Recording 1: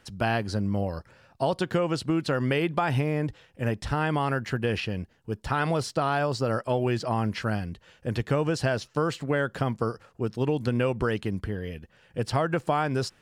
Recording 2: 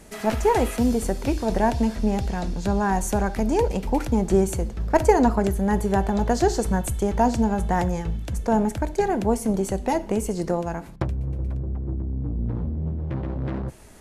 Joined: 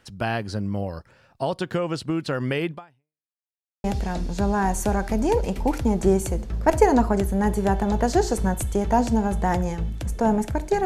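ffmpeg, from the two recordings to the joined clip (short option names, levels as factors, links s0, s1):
-filter_complex "[0:a]apad=whole_dur=10.85,atrim=end=10.85,asplit=2[s0][s1];[s0]atrim=end=3.31,asetpts=PTS-STARTPTS,afade=t=out:st=2.71:d=0.6:c=exp[s2];[s1]atrim=start=3.31:end=3.84,asetpts=PTS-STARTPTS,volume=0[s3];[1:a]atrim=start=2.11:end=9.12,asetpts=PTS-STARTPTS,afade=t=in:d=0.004:c=hsin[s4];[s2][s3][s4]concat=n=3:v=0:a=1"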